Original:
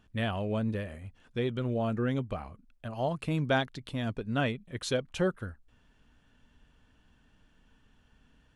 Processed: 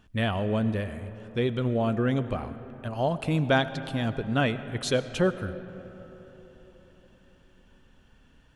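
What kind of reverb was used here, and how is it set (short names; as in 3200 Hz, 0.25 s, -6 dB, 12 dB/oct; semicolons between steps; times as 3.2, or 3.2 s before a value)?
digital reverb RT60 4.2 s, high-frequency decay 0.4×, pre-delay 55 ms, DRR 12.5 dB; gain +4.5 dB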